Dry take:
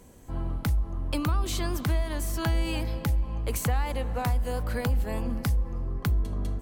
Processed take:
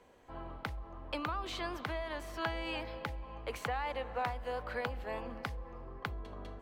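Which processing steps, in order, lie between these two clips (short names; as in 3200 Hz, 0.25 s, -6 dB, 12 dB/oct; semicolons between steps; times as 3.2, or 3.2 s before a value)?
three-band isolator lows -16 dB, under 410 Hz, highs -21 dB, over 4000 Hz; gain -2 dB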